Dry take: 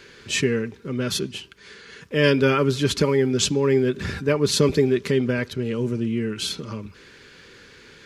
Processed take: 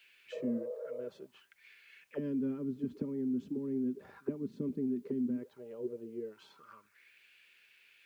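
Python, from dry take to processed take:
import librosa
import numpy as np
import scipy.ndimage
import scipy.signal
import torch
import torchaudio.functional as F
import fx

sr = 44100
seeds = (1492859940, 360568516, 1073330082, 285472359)

y = fx.auto_wah(x, sr, base_hz=240.0, top_hz=2900.0, q=5.6, full_db=-17.5, direction='down')
y = fx.spec_repair(y, sr, seeds[0], start_s=0.35, length_s=0.67, low_hz=400.0, high_hz=1300.0, source='after')
y = fx.quant_dither(y, sr, seeds[1], bits=12, dither='triangular')
y = y * 10.0 ** (-6.0 / 20.0)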